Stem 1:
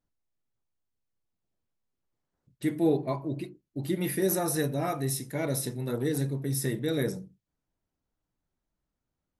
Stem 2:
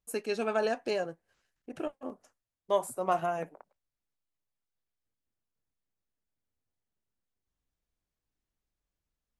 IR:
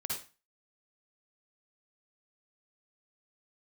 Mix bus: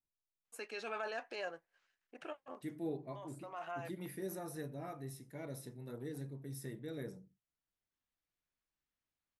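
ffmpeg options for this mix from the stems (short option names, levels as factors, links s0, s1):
-filter_complex "[0:a]adynamicequalizer=threshold=0.00316:dfrequency=2700:dqfactor=0.7:tfrequency=2700:tqfactor=0.7:attack=5:release=100:ratio=0.375:range=3.5:mode=cutabove:tftype=highshelf,volume=0.168,asplit=2[s0][s1];[1:a]alimiter=level_in=1.26:limit=0.0631:level=0:latency=1:release=17,volume=0.794,bandpass=f=2000:t=q:w=0.67:csg=0,adelay=450,volume=0.944[s2];[s1]apad=whole_len=434123[s3];[s2][s3]sidechaincompress=threshold=0.00398:ratio=8:attack=16:release=881[s4];[s0][s4]amix=inputs=2:normalize=0"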